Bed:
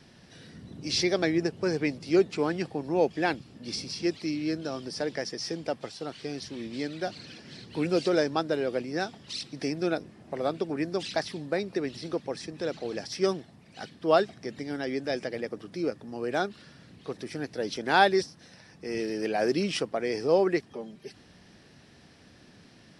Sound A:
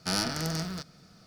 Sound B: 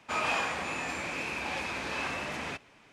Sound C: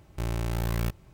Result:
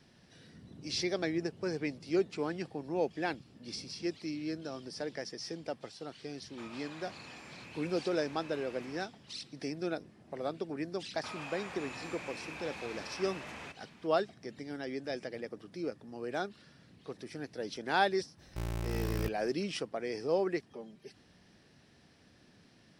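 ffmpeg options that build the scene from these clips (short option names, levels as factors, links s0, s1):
-filter_complex "[2:a]asplit=2[s0][s1];[0:a]volume=0.422[s2];[s0]acompressor=threshold=0.0158:ratio=6:attack=3.2:release=140:knee=1:detection=peak[s3];[s1]acompressor=threshold=0.0112:ratio=6:attack=3.2:release=140:knee=1:detection=peak[s4];[s3]atrim=end=2.92,asetpts=PTS-STARTPTS,volume=0.266,afade=t=in:d=0.004:c=hsin,afade=t=out:st=2.916:d=0.004:c=hsin,adelay=6490[s5];[s4]atrim=end=2.92,asetpts=PTS-STARTPTS,volume=0.75,afade=t=in:d=0.004:c=hsin,afade=t=out:st=2.916:d=0.004:c=hsin,adelay=11150[s6];[3:a]atrim=end=1.13,asetpts=PTS-STARTPTS,volume=0.473,afade=t=in:d=0.004:c=hsin,afade=t=out:st=1.126:d=0.004:c=hsin,adelay=18380[s7];[s2][s5][s6][s7]amix=inputs=4:normalize=0"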